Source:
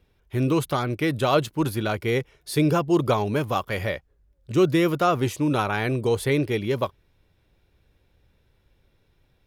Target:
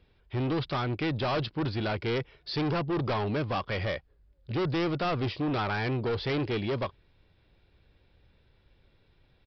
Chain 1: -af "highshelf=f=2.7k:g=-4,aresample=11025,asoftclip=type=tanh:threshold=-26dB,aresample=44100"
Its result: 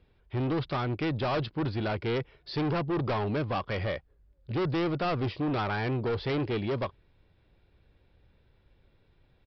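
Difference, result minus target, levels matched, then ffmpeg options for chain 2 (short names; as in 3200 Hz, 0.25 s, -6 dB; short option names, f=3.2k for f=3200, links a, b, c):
4000 Hz band -3.0 dB
-af "highshelf=f=2.7k:g=3,aresample=11025,asoftclip=type=tanh:threshold=-26dB,aresample=44100"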